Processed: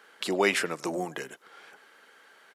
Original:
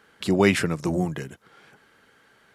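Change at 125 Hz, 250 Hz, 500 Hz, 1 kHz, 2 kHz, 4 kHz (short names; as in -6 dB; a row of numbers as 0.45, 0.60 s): -17.0, -10.5, -4.5, -1.5, -1.5, -1.0 dB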